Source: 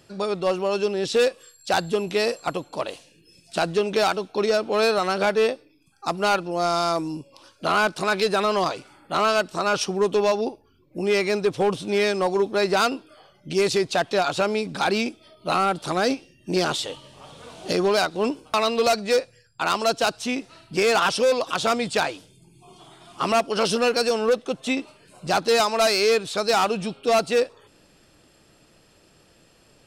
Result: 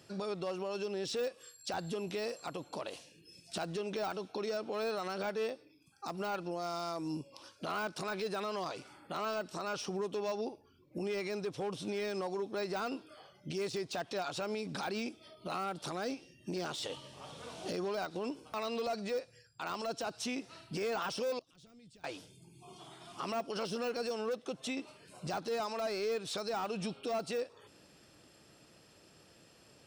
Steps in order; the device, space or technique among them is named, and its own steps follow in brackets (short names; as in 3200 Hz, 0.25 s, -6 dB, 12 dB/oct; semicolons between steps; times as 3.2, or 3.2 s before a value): broadcast voice chain (HPF 71 Hz; de-esser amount 65%; compressor 5:1, threshold -28 dBFS, peak gain reduction 10.5 dB; bell 5500 Hz +4 dB 0.23 oct; limiter -24.5 dBFS, peak gain reduction 8.5 dB); 21.39–22.04 passive tone stack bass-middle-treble 10-0-1; gain -4.5 dB